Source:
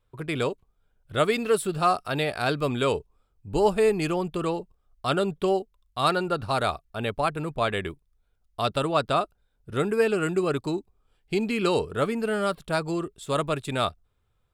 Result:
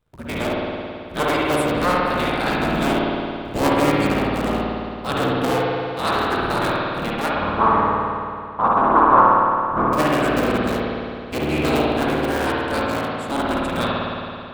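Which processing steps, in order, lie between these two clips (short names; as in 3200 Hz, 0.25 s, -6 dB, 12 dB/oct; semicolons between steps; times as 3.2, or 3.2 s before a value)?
cycle switcher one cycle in 3, inverted; 7.3–9.93 synth low-pass 1100 Hz, resonance Q 5.4; spring tank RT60 2.5 s, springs 54 ms, chirp 20 ms, DRR -5 dB; gain -1 dB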